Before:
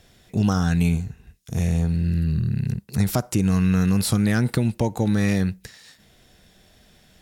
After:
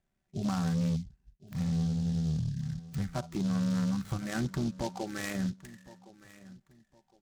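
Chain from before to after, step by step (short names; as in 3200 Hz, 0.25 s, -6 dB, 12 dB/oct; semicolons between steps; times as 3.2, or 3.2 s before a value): Wiener smoothing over 9 samples; de-esser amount 55%; spectral noise reduction 19 dB; treble ducked by the level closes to 1700 Hz, closed at -23 dBFS; bell 460 Hz -12.5 dB 0.29 oct; comb 5.2 ms, depth 46%; in parallel at -2.5 dB: limiter -20.5 dBFS, peak gain reduction 8 dB; on the sum: overloaded stage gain 16 dB; AM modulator 74 Hz, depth 30%; on a send: feedback echo 1.063 s, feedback 29%, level -19 dB; on the sum: noise-modulated delay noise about 4500 Hz, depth 0.054 ms; gain -8.5 dB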